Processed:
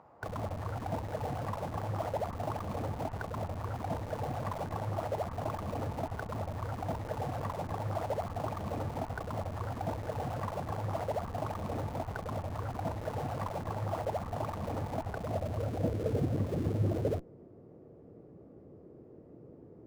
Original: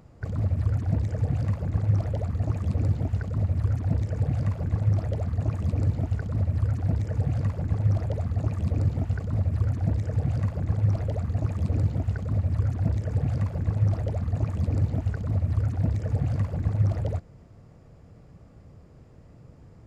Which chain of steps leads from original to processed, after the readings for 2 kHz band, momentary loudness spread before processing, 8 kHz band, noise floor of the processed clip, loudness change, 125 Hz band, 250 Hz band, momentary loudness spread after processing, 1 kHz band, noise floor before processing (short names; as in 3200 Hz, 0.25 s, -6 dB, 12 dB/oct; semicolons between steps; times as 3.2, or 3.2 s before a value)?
+0.5 dB, 3 LU, n/a, -54 dBFS, -9.5 dB, -13.0 dB, -6.5 dB, 21 LU, +7.5 dB, -51 dBFS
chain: band-pass sweep 900 Hz -> 370 Hz, 14.96–16.24; in parallel at -7 dB: Schmitt trigger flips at -49.5 dBFS; on the sum: gain +8.5 dB